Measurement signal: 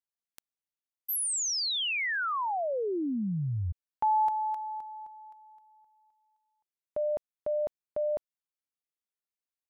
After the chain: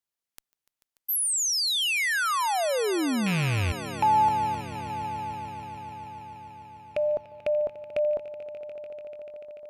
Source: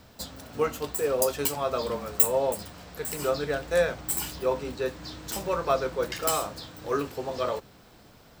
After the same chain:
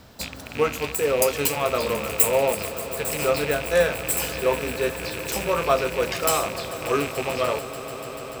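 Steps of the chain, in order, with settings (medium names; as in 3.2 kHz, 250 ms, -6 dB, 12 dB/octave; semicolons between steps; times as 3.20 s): rattle on loud lows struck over -42 dBFS, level -25 dBFS; echo with a slow build-up 146 ms, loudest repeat 5, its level -18 dB; Chebyshev shaper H 5 -26 dB, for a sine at -2.5 dBFS; trim +2.5 dB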